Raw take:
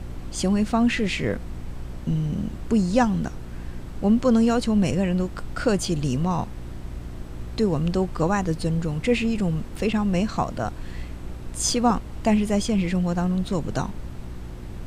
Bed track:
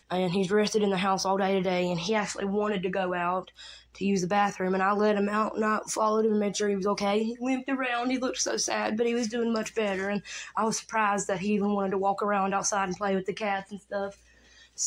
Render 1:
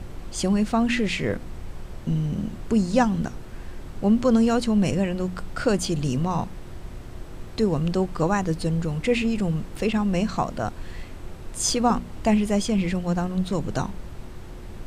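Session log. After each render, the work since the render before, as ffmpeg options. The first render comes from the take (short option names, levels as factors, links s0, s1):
-af "bandreject=f=60:t=h:w=4,bandreject=f=120:t=h:w=4,bandreject=f=180:t=h:w=4,bandreject=f=240:t=h:w=4,bandreject=f=300:t=h:w=4"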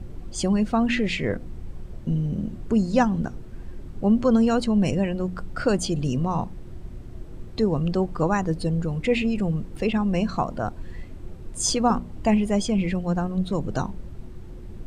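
-af "afftdn=nr=10:nf=-39"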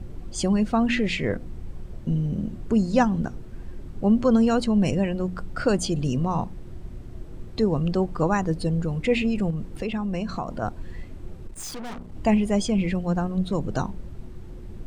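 -filter_complex "[0:a]asettb=1/sr,asplit=3[s0][s1][s2];[s0]atrim=end=9.504[s3];[s1]atrim=start=9.5:end=10.62,asetpts=PTS-STARTPTS,afade=t=in:d=0.004:c=qsin,afade=t=out:st=1.116:d=0.004:c=qsin,acompressor=threshold=0.0562:ratio=3:attack=3.2:release=140:knee=1:detection=peak[s4];[s2]atrim=start=10.616[s5];[s3][s4]acrossfade=d=0.004:c1=hsin:c2=qsin[s6];[s6][s5]acrossfade=d=0.004:c1=qsin:c2=hsin,asplit=3[s7][s8][s9];[s7]afade=t=out:st=11.47:d=0.02[s10];[s8]aeval=exprs='(tanh(50.1*val(0)+0.7)-tanh(0.7))/50.1':c=same,afade=t=in:st=11.47:d=0.02,afade=t=out:st=12.14:d=0.02[s11];[s9]afade=t=in:st=12.14:d=0.02[s12];[s10][s11][s12]amix=inputs=3:normalize=0"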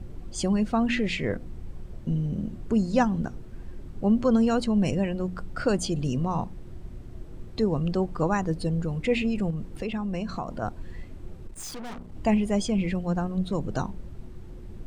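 -af "volume=0.75"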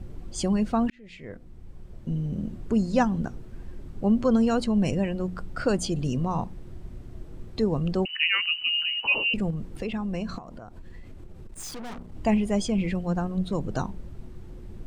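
-filter_complex "[0:a]asettb=1/sr,asplit=3[s0][s1][s2];[s0]atrim=end=8.054[s3];[s1]atrim=start=8.05:end=9.34,asetpts=PTS-STARTPTS,afade=t=in:d=0.004:c=qsin,afade=t=out:st=1.286:d=0.004:c=qsin,lowpass=f=2600:t=q:w=0.5098,lowpass=f=2600:t=q:w=0.6013,lowpass=f=2600:t=q:w=0.9,lowpass=f=2600:t=q:w=2.563,afreqshift=-3000[s4];[s2]atrim=start=9.336[s5];[s3][s4]acrossfade=d=0.004:c1=hsin:c2=qsin[s6];[s6][s5]acrossfade=d=0.004:c1=qsin:c2=hsin,asettb=1/sr,asplit=3[s7][s8][s9];[s7]atrim=end=10.384[s10];[s8]atrim=start=10.38:end=11.53,asetpts=PTS-STARTPTS,afade=t=in:d=0.004:c=qsin,afade=t=out:st=1.146:d=0.004:c=qsin,acompressor=threshold=0.0141:ratio=12:attack=3.2:release=140:knee=1:detection=peak[s11];[s9]atrim=start=11.526[s12];[s10][s11]acrossfade=d=0.004:c1=hsin:c2=qsin[s13];[s13][s12]acrossfade=d=0.004:c1=qsin:c2=hsin,asplit=2[s14][s15];[s14]atrim=end=0.9,asetpts=PTS-STARTPTS,afade=t=out:st=0.896:d=0.004:c=hsin[s16];[s15]atrim=start=0.9,asetpts=PTS-STARTPTS,afade=t=in:d=1.58[s17];[s16][s17]concat=n=2:v=0:a=1"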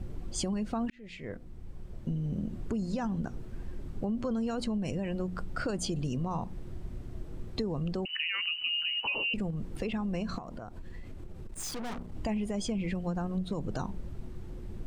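-af "alimiter=limit=0.119:level=0:latency=1:release=26,acompressor=threshold=0.0355:ratio=6"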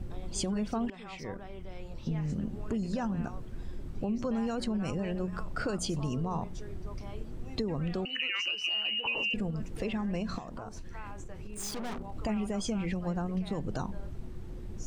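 -filter_complex "[1:a]volume=0.0841[s0];[0:a][s0]amix=inputs=2:normalize=0"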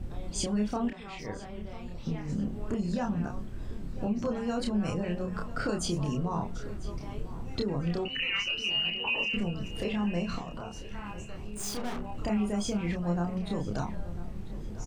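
-filter_complex "[0:a]asplit=2[s0][s1];[s1]adelay=29,volume=0.708[s2];[s0][s2]amix=inputs=2:normalize=0,asplit=2[s3][s4];[s4]adelay=996,lowpass=f=5000:p=1,volume=0.158,asplit=2[s5][s6];[s6]adelay=996,lowpass=f=5000:p=1,volume=0.46,asplit=2[s7][s8];[s8]adelay=996,lowpass=f=5000:p=1,volume=0.46,asplit=2[s9][s10];[s10]adelay=996,lowpass=f=5000:p=1,volume=0.46[s11];[s3][s5][s7][s9][s11]amix=inputs=5:normalize=0"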